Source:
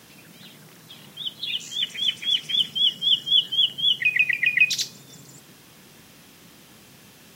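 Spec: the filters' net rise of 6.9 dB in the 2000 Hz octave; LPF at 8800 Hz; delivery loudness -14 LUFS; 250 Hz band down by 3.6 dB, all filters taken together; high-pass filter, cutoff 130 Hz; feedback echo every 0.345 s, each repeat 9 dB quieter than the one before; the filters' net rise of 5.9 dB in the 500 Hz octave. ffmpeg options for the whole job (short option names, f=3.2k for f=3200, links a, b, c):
-af "highpass=130,lowpass=8.8k,equalizer=f=250:t=o:g=-7,equalizer=f=500:t=o:g=9,equalizer=f=2k:t=o:g=8.5,aecho=1:1:345|690|1035|1380:0.355|0.124|0.0435|0.0152,volume=1.5dB"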